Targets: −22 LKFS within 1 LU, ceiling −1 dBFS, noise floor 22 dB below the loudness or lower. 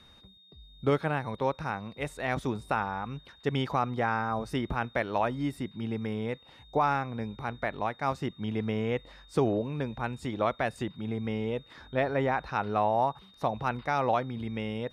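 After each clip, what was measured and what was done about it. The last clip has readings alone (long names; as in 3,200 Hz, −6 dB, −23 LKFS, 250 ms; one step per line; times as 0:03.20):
interfering tone 3,700 Hz; level of the tone −56 dBFS; integrated loudness −31.5 LKFS; sample peak −15.0 dBFS; target loudness −22.0 LKFS
→ notch filter 3,700 Hz, Q 30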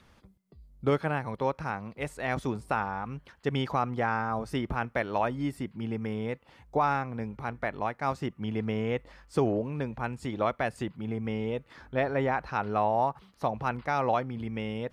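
interfering tone none found; integrated loudness −31.5 LKFS; sample peak −15.0 dBFS; target loudness −22.0 LKFS
→ level +9.5 dB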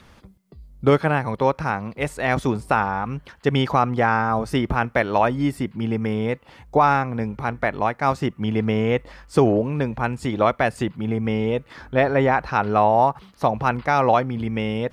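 integrated loudness −22.0 LKFS; sample peak −5.5 dBFS; background noise floor −52 dBFS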